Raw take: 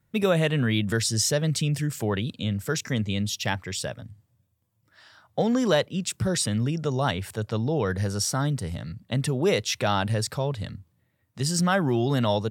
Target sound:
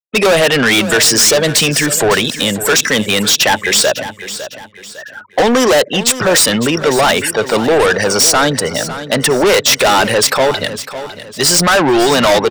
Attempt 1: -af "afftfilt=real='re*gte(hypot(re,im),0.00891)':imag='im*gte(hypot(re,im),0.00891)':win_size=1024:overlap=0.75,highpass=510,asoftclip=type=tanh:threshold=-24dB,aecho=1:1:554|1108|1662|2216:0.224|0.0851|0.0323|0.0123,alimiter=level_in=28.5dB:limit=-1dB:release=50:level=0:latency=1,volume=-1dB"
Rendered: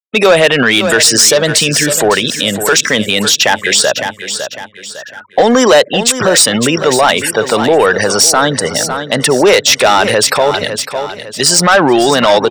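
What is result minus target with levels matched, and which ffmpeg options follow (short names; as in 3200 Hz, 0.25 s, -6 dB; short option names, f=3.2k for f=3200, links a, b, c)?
soft clip: distortion -7 dB
-af "afftfilt=real='re*gte(hypot(re,im),0.00891)':imag='im*gte(hypot(re,im),0.00891)':win_size=1024:overlap=0.75,highpass=510,asoftclip=type=tanh:threshold=-35.5dB,aecho=1:1:554|1108|1662|2216:0.224|0.0851|0.0323|0.0123,alimiter=level_in=28.5dB:limit=-1dB:release=50:level=0:latency=1,volume=-1dB"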